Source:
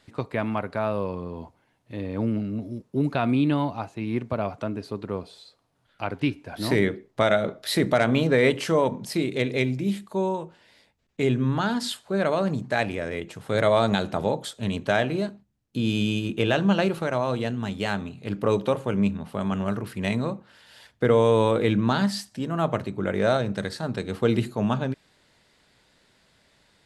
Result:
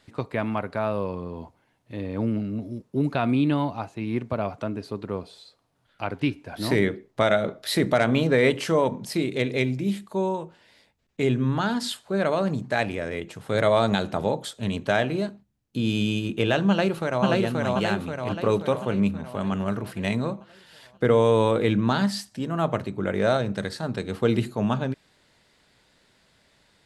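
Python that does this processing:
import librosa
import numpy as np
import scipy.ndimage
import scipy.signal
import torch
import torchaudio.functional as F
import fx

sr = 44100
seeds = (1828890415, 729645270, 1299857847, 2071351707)

y = fx.echo_throw(x, sr, start_s=16.69, length_s=0.57, ms=530, feedback_pct=55, wet_db=-1.0)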